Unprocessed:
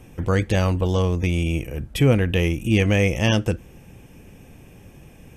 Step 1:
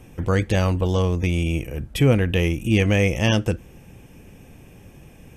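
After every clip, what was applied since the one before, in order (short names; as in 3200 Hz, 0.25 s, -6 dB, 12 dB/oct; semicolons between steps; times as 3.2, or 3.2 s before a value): nothing audible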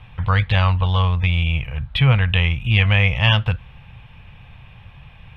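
EQ curve 130 Hz 0 dB, 320 Hz -24 dB, 1000 Hz +4 dB, 1700 Hz 0 dB, 3900 Hz +4 dB, 6200 Hz -27 dB; gain +5 dB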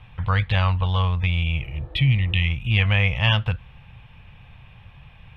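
spectral repair 1.63–2.47, 310–1800 Hz both; gain -3.5 dB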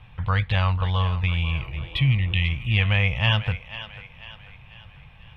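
thinning echo 0.494 s, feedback 48%, high-pass 420 Hz, level -12.5 dB; gain -1.5 dB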